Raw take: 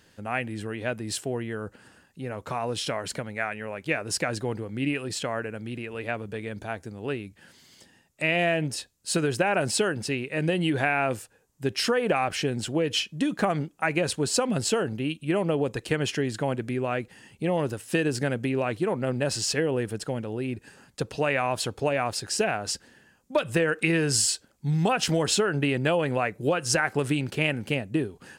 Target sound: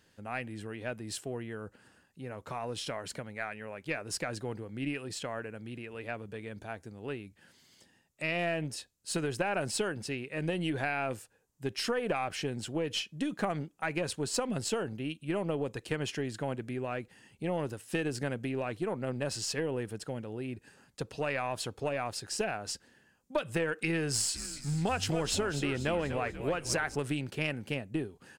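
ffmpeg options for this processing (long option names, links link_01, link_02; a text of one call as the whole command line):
ffmpeg -i in.wav -filter_complex "[0:a]aeval=exprs='0.422*(cos(1*acos(clip(val(0)/0.422,-1,1)))-cos(1*PI/2))+0.0841*(cos(2*acos(clip(val(0)/0.422,-1,1)))-cos(2*PI/2))':channel_layout=same,asplit=3[link_01][link_02][link_03];[link_01]afade=type=out:start_time=24.34:duration=0.02[link_04];[link_02]asplit=6[link_05][link_06][link_07][link_08][link_09][link_10];[link_06]adelay=243,afreqshift=-63,volume=-10dB[link_11];[link_07]adelay=486,afreqshift=-126,volume=-16.7dB[link_12];[link_08]adelay=729,afreqshift=-189,volume=-23.5dB[link_13];[link_09]adelay=972,afreqshift=-252,volume=-30.2dB[link_14];[link_10]adelay=1215,afreqshift=-315,volume=-37dB[link_15];[link_05][link_11][link_12][link_13][link_14][link_15]amix=inputs=6:normalize=0,afade=type=in:start_time=24.34:duration=0.02,afade=type=out:start_time=26.94:duration=0.02[link_16];[link_03]afade=type=in:start_time=26.94:duration=0.02[link_17];[link_04][link_16][link_17]amix=inputs=3:normalize=0,volume=-7.5dB" out.wav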